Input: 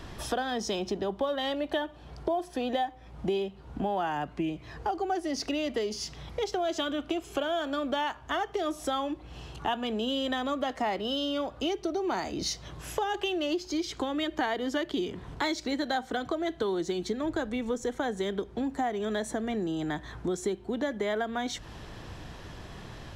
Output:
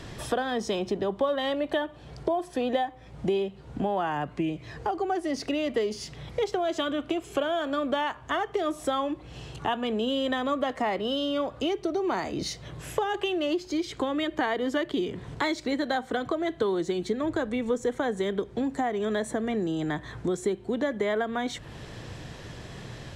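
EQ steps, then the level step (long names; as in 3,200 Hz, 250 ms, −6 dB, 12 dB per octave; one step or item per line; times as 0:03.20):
dynamic equaliser 1,100 Hz, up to +6 dB, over −51 dBFS, Q 3.6
dynamic equaliser 5,900 Hz, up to −8 dB, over −54 dBFS, Q 1
octave-band graphic EQ 125/250/500/2,000/4,000/8,000 Hz +9/+3/+7/+6/+4/+9 dB
−3.5 dB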